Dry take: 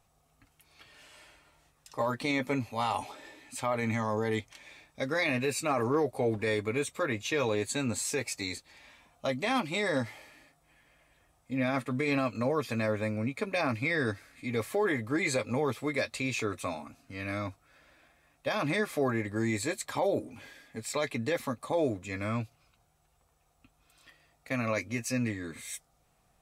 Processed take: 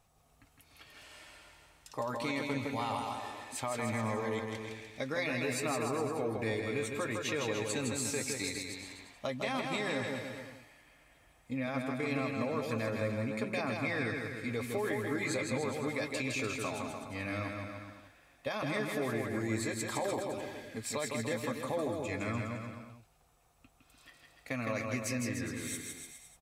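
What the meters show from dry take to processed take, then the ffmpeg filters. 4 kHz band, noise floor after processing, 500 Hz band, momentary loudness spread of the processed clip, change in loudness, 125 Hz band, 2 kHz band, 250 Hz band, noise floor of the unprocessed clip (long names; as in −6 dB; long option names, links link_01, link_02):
−2.5 dB, −66 dBFS, −4.0 dB, 11 LU, −4.0 dB, −3.0 dB, −3.5 dB, −3.5 dB, −70 dBFS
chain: -af "acompressor=threshold=-35dB:ratio=2.5,aecho=1:1:160|296|411.6|509.9|593.4:0.631|0.398|0.251|0.158|0.1"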